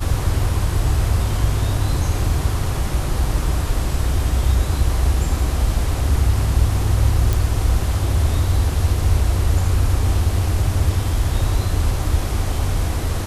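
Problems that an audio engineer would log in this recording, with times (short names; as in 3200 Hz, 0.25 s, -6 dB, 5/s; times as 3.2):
7.33 pop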